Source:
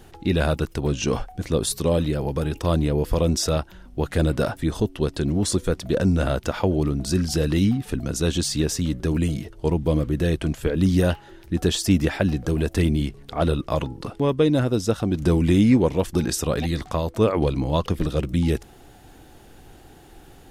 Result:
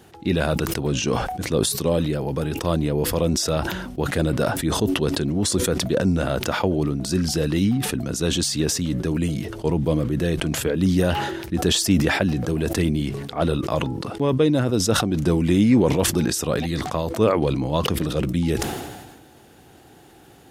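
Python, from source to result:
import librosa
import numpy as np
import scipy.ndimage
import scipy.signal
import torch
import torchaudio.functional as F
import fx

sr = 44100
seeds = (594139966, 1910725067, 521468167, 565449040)

y = scipy.signal.sosfilt(scipy.signal.butter(2, 100.0, 'highpass', fs=sr, output='sos'), x)
y = fx.sustainer(y, sr, db_per_s=41.0)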